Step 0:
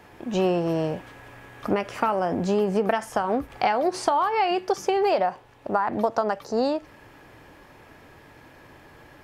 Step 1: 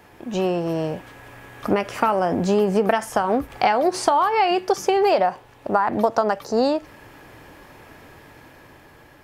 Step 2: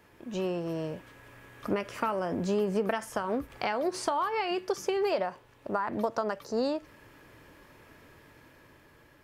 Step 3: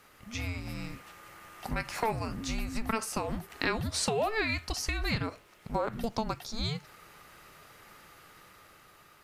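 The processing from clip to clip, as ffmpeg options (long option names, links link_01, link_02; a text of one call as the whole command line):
ffmpeg -i in.wav -af "highshelf=frequency=9200:gain=6,dynaudnorm=framelen=350:gausssize=7:maxgain=4.5dB" out.wav
ffmpeg -i in.wav -af "equalizer=frequency=770:width=6:gain=-9.5,volume=-9dB" out.wav
ffmpeg -i in.wav -af "tiltshelf=frequency=970:gain=-8,afreqshift=-450" out.wav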